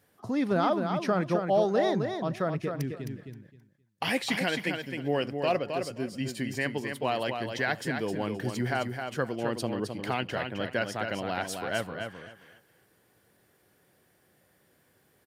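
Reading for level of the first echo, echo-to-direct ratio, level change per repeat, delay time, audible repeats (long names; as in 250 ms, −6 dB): −6.0 dB, −6.0 dB, −14.0 dB, 263 ms, 3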